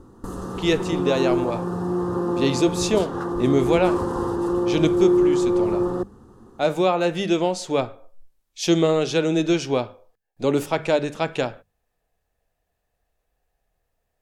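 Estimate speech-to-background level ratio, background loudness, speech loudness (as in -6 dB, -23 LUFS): 0.5 dB, -23.5 LUFS, -23.0 LUFS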